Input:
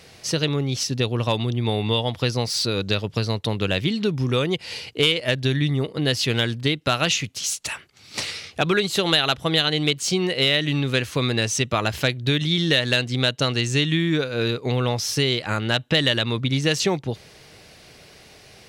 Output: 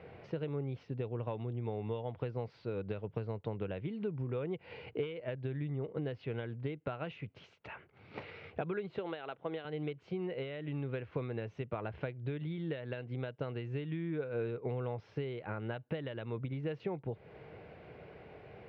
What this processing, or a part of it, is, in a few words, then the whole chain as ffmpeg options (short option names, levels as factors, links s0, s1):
bass amplifier: -filter_complex "[0:a]asettb=1/sr,asplit=3[s0][s1][s2];[s0]atrim=end=8.984[s3];[s1]atrim=start=8.98:end=9.65,asetpts=PTS-STARTPTS,afade=t=in:d=0.004:c=qsin,afade=t=out:st=0.666:d=0.004:c=qsin,highpass=250[s4];[s2]atrim=start=9.646[s5];[s3][s4]acrossfade=d=0.004:c1=hsin:c2=qsin[s6];[s6][s5]acrossfade=d=0.004:c1=qsin:c2=hsin,acompressor=threshold=0.02:ratio=5,highpass=63,equalizer=f=250:t=q:w=4:g=-4,equalizer=f=460:t=q:w=4:g=4,equalizer=f=1200:t=q:w=4:g=-5,equalizer=f=1800:t=q:w=4:g=-7,lowpass=f=2000:w=0.5412,lowpass=f=2000:w=1.3066,volume=0.841"